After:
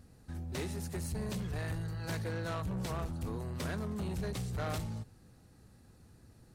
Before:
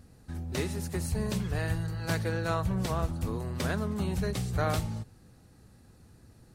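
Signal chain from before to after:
soft clipping −28.5 dBFS, distortion −12 dB
level −3 dB

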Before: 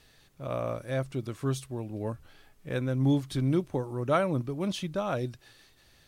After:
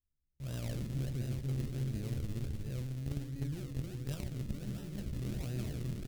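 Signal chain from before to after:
peak hold with a decay on every bin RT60 0.84 s
noise gate −50 dBFS, range −20 dB
low-shelf EQ 96 Hz +10 dB
repeating echo 305 ms, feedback 49%, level −3 dB
sample-and-hold swept by an LFO 39×, swing 100% 1.4 Hz
double-tracking delay 14 ms −8 dB
in parallel at −8 dB: log-companded quantiser 2 bits
on the sum: automatic gain control gain up to 14 dB
guitar amp tone stack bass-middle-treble 10-0-1
tube saturation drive 21 dB, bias 0.7
reversed playback
downward compressor, threshold −31 dBFS, peak gain reduction 7 dB
reversed playback
level −1.5 dB

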